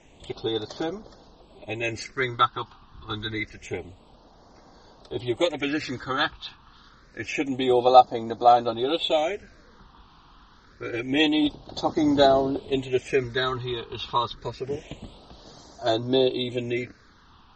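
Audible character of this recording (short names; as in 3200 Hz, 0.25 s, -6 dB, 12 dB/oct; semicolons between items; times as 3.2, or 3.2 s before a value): phasing stages 6, 0.27 Hz, lowest notch 550–2500 Hz; MP3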